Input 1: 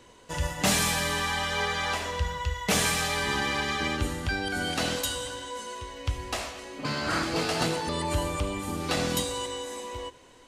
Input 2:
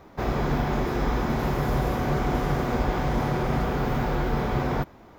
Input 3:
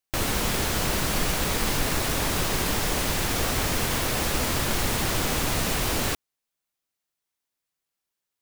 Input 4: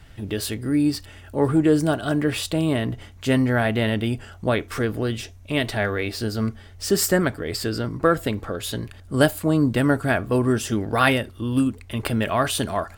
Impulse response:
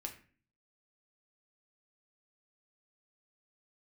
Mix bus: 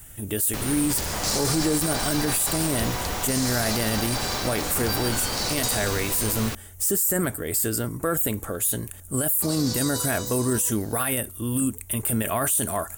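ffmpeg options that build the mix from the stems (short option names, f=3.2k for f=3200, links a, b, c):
-filter_complex "[0:a]alimiter=limit=-22.5dB:level=0:latency=1,highshelf=f=3.6k:t=q:w=3:g=9,adelay=600,volume=-3dB,asplit=3[a][b][c];[a]atrim=end=6.48,asetpts=PTS-STARTPTS,afade=t=out:st=6.476:d=0.004:c=hsin[d];[b]atrim=start=6.48:end=9.42,asetpts=PTS-STARTPTS,volume=0[e];[c]atrim=start=9.42,asetpts=PTS-STARTPTS,afade=t=in:d=0.004:c=hsin[f];[d][e][f]concat=n=3:v=0:a=1[g];[1:a]highpass=f=520:w=0.5412,highpass=f=520:w=1.3066,acompressor=threshold=-34dB:ratio=6,adelay=950,volume=1.5dB[h];[2:a]adelay=400,volume=-5.5dB[i];[3:a]aexciter=amount=7.5:drive=9.6:freq=7k,volume=-2dB[j];[g][h][i][j]amix=inputs=4:normalize=0,alimiter=limit=-14dB:level=0:latency=1:release=17"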